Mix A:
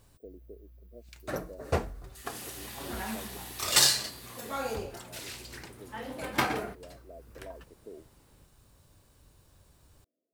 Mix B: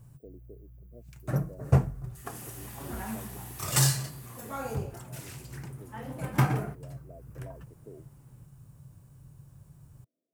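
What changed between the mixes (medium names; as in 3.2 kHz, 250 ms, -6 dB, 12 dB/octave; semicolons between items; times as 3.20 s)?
first sound: add peaking EQ 140 Hz +14.5 dB 0.65 oct; master: add graphic EQ 125/500/2000/4000 Hz +6/-3/-3/-11 dB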